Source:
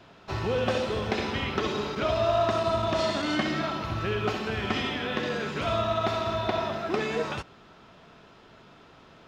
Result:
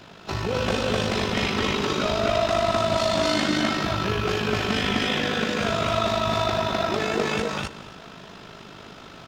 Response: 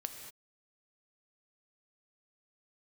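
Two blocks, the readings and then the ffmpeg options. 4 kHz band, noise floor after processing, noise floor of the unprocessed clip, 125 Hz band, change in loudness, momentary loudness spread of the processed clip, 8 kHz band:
+7.5 dB, -44 dBFS, -53 dBFS, +4.0 dB, +4.5 dB, 20 LU, +10.5 dB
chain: -filter_complex "[0:a]equalizer=f=190:t=o:w=0.51:g=4,asoftclip=type=tanh:threshold=0.075,asplit=2[s0][s1];[1:a]atrim=start_sample=2205,asetrate=39249,aresample=44100[s2];[s1][s2]afir=irnorm=-1:irlink=0,volume=0.531[s3];[s0][s3]amix=inputs=2:normalize=0,tremolo=f=51:d=0.621,aecho=1:1:207|256.6:0.316|1,asplit=2[s4][s5];[s5]acompressor=threshold=0.0178:ratio=6,volume=0.794[s6];[s4][s6]amix=inputs=2:normalize=0,highshelf=f=3700:g=8"

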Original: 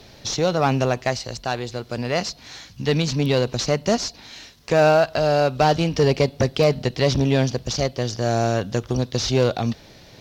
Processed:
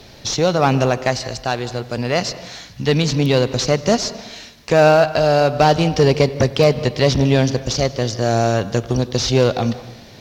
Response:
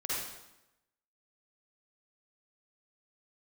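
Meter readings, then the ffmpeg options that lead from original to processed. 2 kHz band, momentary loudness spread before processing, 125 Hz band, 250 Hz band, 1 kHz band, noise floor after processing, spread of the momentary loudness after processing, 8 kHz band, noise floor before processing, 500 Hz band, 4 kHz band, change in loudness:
+4.0 dB, 10 LU, +4.0 dB, +4.0 dB, +4.0 dB, -42 dBFS, 10 LU, +4.0 dB, -47 dBFS, +4.0 dB, +4.0 dB, +4.0 dB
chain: -filter_complex "[0:a]asplit=2[s0][s1];[1:a]atrim=start_sample=2205,highshelf=f=5300:g=-9.5,adelay=97[s2];[s1][s2]afir=irnorm=-1:irlink=0,volume=0.119[s3];[s0][s3]amix=inputs=2:normalize=0,volume=1.58"

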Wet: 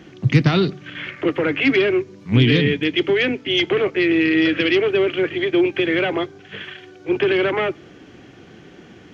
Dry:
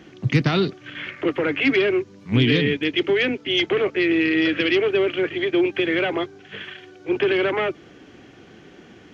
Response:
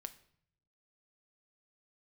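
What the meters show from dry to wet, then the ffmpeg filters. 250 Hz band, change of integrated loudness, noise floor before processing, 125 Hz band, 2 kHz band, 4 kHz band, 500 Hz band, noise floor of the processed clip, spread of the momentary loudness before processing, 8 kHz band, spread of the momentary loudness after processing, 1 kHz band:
+2.5 dB, +2.5 dB, -48 dBFS, +4.5 dB, +2.0 dB, +1.5 dB, +2.0 dB, -45 dBFS, 14 LU, no reading, 14 LU, +2.0 dB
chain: -filter_complex "[0:a]asplit=2[s0][s1];[s1]equalizer=f=110:w=0.53:g=11[s2];[1:a]atrim=start_sample=2205[s3];[s2][s3]afir=irnorm=-1:irlink=0,volume=0.376[s4];[s0][s4]amix=inputs=2:normalize=0"

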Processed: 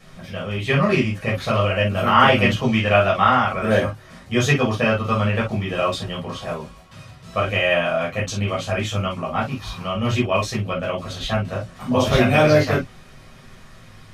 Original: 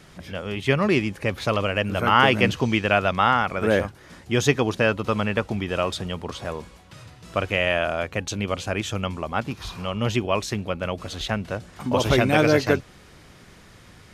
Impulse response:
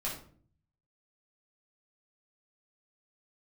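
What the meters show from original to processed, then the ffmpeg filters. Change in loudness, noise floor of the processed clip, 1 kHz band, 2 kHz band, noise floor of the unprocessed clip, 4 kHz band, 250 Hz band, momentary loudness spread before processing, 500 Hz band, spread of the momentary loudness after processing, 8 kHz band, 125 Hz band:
+3.0 dB, -45 dBFS, +3.5 dB, +2.0 dB, -49 dBFS, +2.0 dB, +2.5 dB, 13 LU, +3.0 dB, 14 LU, +0.5 dB, +5.0 dB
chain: -filter_complex "[1:a]atrim=start_sample=2205,atrim=end_sample=3087[s0];[0:a][s0]afir=irnorm=-1:irlink=0"

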